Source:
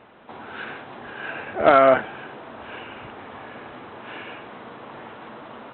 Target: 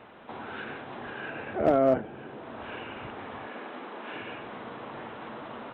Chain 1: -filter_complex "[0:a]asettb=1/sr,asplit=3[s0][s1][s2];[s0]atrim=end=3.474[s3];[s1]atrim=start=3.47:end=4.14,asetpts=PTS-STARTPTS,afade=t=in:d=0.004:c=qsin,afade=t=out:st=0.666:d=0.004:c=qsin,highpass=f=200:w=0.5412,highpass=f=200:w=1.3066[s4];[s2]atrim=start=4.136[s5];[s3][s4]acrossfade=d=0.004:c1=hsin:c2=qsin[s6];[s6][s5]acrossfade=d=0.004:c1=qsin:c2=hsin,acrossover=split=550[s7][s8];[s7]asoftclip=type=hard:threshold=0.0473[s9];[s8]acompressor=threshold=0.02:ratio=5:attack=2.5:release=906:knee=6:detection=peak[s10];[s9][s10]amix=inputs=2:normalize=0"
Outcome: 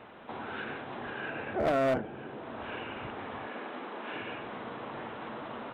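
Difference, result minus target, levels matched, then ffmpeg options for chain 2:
hard clipper: distortion +17 dB
-filter_complex "[0:a]asettb=1/sr,asplit=3[s0][s1][s2];[s0]atrim=end=3.474[s3];[s1]atrim=start=3.47:end=4.14,asetpts=PTS-STARTPTS,afade=t=in:d=0.004:c=qsin,afade=t=out:st=0.666:d=0.004:c=qsin,highpass=f=200:w=0.5412,highpass=f=200:w=1.3066[s4];[s2]atrim=start=4.136[s5];[s3][s4]acrossfade=d=0.004:c1=hsin:c2=qsin[s6];[s6][s5]acrossfade=d=0.004:c1=qsin:c2=hsin,acrossover=split=550[s7][s8];[s7]asoftclip=type=hard:threshold=0.168[s9];[s8]acompressor=threshold=0.02:ratio=5:attack=2.5:release=906:knee=6:detection=peak[s10];[s9][s10]amix=inputs=2:normalize=0"

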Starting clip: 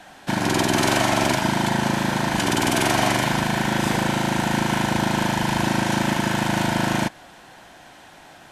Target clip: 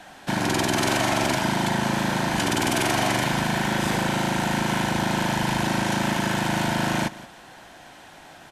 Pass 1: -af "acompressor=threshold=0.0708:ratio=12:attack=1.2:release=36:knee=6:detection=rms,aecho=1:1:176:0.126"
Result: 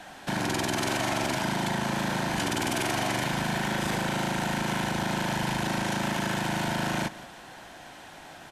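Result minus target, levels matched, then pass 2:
compression: peak gain reduction +6.5 dB
-af "acompressor=threshold=0.168:ratio=12:attack=1.2:release=36:knee=6:detection=rms,aecho=1:1:176:0.126"

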